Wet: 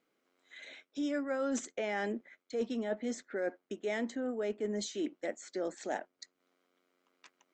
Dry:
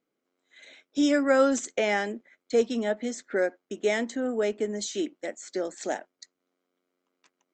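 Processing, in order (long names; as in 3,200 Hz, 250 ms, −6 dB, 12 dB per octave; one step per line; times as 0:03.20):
high-shelf EQ 4,800 Hz −10 dB
reversed playback
downward compressor 6 to 1, threshold −32 dBFS, peak gain reduction 15 dB
reversed playback
one half of a high-frequency compander encoder only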